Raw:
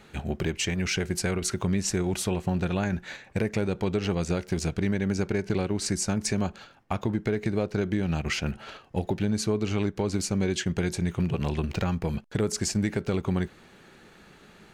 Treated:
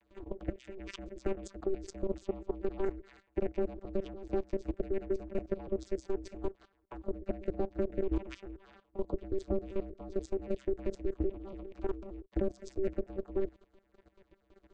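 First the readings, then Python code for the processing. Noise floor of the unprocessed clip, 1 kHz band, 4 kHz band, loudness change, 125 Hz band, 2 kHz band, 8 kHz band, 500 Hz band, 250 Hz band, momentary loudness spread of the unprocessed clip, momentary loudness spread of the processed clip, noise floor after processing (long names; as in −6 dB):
−54 dBFS, −12.0 dB, below −20 dB, −9.5 dB, −17.5 dB, −20.0 dB, below −25 dB, −4.0 dB, −11.5 dB, 4 LU, 10 LU, −73 dBFS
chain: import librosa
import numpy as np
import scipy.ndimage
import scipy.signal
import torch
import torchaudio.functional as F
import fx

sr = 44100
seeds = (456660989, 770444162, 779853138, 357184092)

y = fx.vocoder_arp(x, sr, chord='bare fifth', root=48, every_ms=96)
y = y * np.sin(2.0 * np.pi * 190.0 * np.arange(len(y)) / sr)
y = fx.level_steps(y, sr, step_db=15)
y = y * librosa.db_to_amplitude(1.5)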